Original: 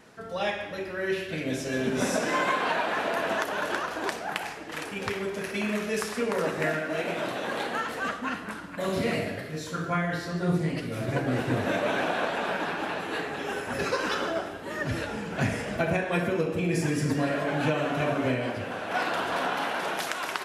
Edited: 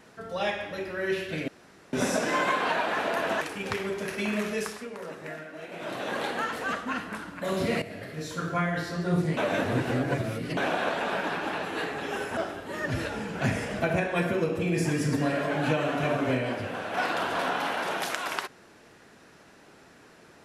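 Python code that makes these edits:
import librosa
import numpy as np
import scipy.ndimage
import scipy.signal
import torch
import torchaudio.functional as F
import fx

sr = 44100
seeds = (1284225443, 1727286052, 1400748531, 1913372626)

y = fx.edit(x, sr, fx.room_tone_fill(start_s=1.48, length_s=0.45),
    fx.cut(start_s=3.41, length_s=1.36),
    fx.fade_down_up(start_s=5.86, length_s=1.58, db=-11.5, fade_s=0.37),
    fx.fade_in_from(start_s=9.18, length_s=0.57, curve='qsin', floor_db=-14.0),
    fx.reverse_span(start_s=10.73, length_s=1.2),
    fx.cut(start_s=13.73, length_s=0.61), tone=tone)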